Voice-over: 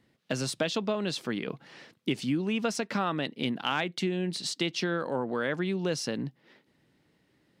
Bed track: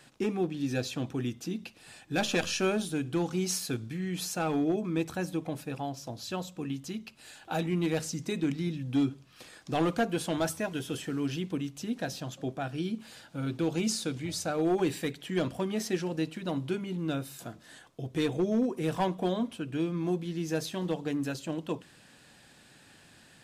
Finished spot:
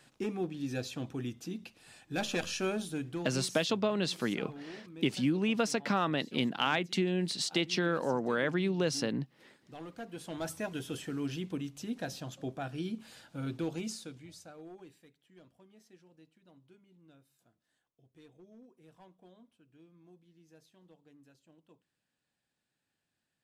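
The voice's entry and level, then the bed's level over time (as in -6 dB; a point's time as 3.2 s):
2.95 s, -0.5 dB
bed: 3.03 s -5 dB
3.62 s -18.5 dB
9.88 s -18.5 dB
10.64 s -4 dB
13.55 s -4 dB
15.1 s -29 dB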